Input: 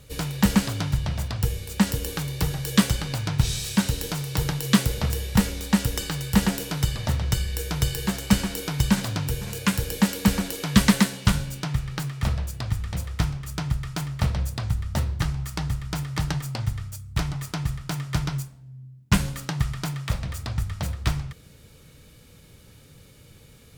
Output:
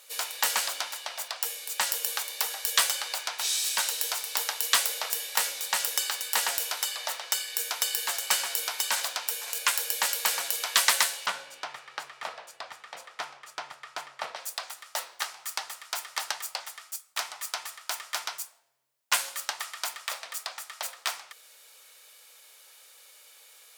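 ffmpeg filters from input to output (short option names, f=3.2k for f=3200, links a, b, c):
-filter_complex "[0:a]asettb=1/sr,asplit=3[a][b][c];[a]atrim=end=11.264[d];[b]atrim=start=11.26:end=14.36,asetpts=PTS-STARTPTS,afade=t=in:d=0.004:c=qsin,afade=t=out:st=3.096:d=0.004:c=qsin,aemphasis=mode=reproduction:type=riaa[e];[c]atrim=start=14.356[f];[d][e]acrossfade=d=0.004:c1=hsin:c2=qsin[g];[g][f]acrossfade=d=0.004:c1=qsin:c2=hsin,highpass=f=660:w=0.5412,highpass=f=660:w=1.3066,highshelf=f=4.6k:g=6"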